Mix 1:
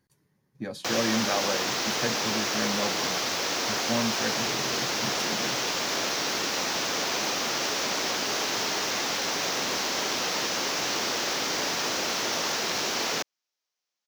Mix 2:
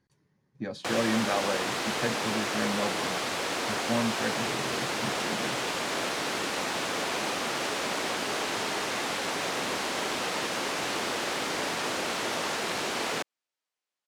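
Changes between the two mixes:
background: add high shelf with overshoot 7,300 Hz +8.5 dB, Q 3
master: add high-frequency loss of the air 64 metres

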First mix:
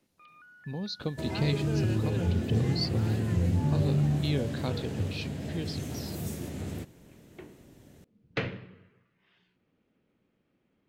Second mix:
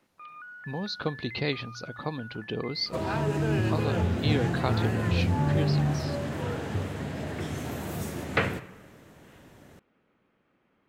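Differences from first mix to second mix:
second sound: entry +1.75 s
master: add parametric band 1,200 Hz +11 dB 2.2 octaves

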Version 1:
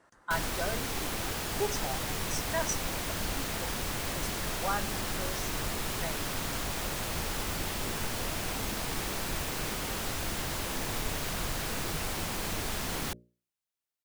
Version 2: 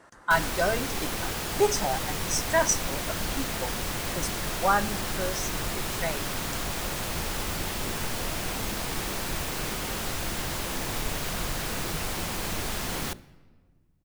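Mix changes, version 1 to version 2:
speech +9.5 dB
background: send on

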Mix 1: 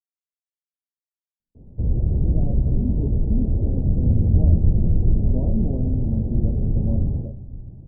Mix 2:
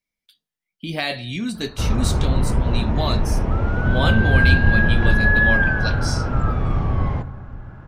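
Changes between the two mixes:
speech: entry −1.40 s
master: remove Gaussian smoothing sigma 19 samples

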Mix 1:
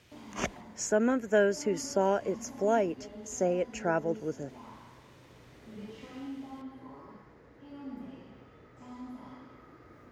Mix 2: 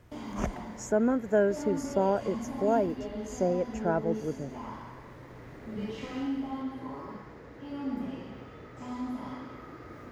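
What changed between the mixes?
speech: remove meter weighting curve D
background +8.5 dB

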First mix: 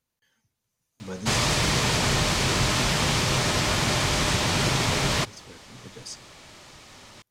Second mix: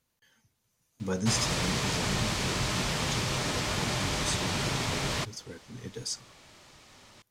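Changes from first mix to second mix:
speech +4.5 dB
background −7.0 dB

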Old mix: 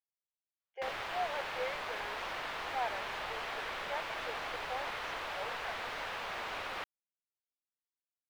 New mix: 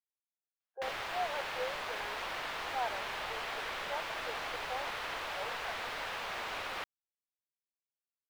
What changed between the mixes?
speech: add linear-phase brick-wall low-pass 1,700 Hz
master: add high-shelf EQ 4,400 Hz +5 dB

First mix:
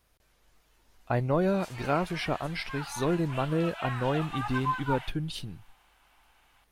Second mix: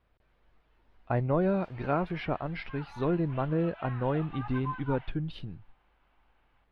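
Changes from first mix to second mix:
background −5.5 dB
master: add high-frequency loss of the air 380 metres

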